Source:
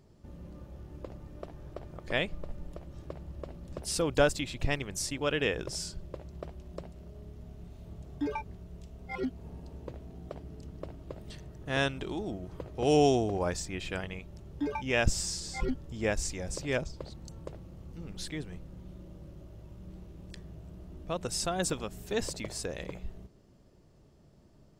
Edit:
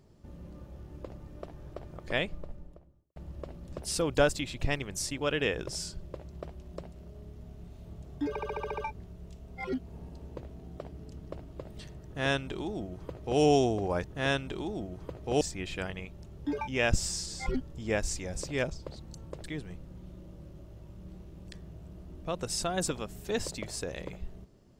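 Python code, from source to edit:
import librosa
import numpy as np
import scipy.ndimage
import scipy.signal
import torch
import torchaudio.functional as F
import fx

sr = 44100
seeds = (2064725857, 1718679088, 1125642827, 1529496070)

y = fx.studio_fade_out(x, sr, start_s=2.16, length_s=1.0)
y = fx.edit(y, sr, fx.stutter(start_s=8.29, slice_s=0.07, count=8),
    fx.duplicate(start_s=11.55, length_s=1.37, to_s=13.55),
    fx.cut(start_s=17.58, length_s=0.68), tone=tone)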